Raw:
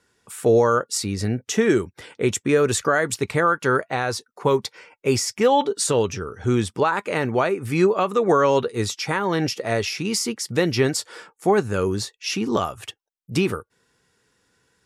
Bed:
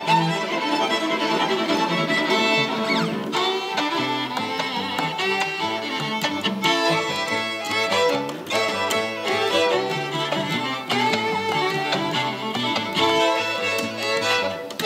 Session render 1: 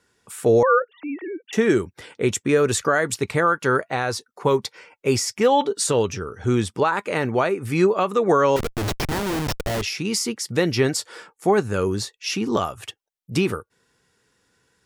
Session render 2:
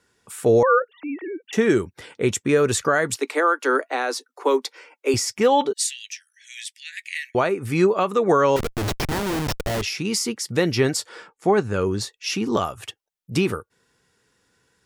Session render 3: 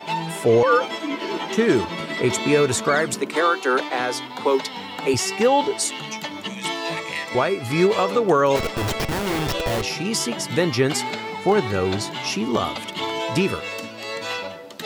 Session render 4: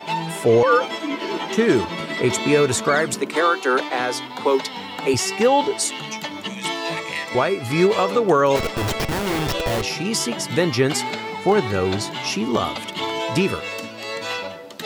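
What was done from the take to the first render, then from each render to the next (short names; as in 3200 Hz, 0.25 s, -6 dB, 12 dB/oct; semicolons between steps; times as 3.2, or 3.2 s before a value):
0.63–1.53 sine-wave speech; 8.56–9.82 Schmitt trigger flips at -23.5 dBFS
3.16–5.14 steep high-pass 250 Hz 96 dB/oct; 5.73–7.35 steep high-pass 1800 Hz 96 dB/oct; 11.09–12.01 air absorption 57 m
add bed -7.5 dB
gain +1 dB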